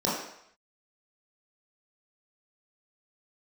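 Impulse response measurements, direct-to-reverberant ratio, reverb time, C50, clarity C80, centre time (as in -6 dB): -8.5 dB, 0.70 s, 1.5 dB, 5.5 dB, 57 ms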